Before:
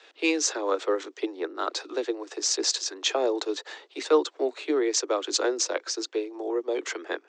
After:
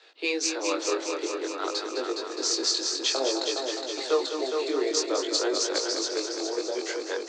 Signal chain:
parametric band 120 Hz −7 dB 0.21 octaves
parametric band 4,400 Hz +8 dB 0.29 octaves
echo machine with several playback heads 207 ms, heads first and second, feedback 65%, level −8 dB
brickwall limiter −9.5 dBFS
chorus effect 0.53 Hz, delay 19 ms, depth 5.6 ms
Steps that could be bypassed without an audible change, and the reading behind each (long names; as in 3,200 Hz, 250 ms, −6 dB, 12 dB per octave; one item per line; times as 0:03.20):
parametric band 120 Hz: nothing at its input below 240 Hz